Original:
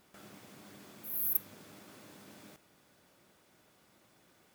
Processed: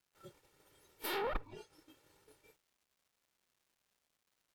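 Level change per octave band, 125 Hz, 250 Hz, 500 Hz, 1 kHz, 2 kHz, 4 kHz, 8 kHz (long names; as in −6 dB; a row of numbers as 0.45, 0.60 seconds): +1.0, 0.0, +13.0, +12.5, +9.0, +7.5, −10.0 decibels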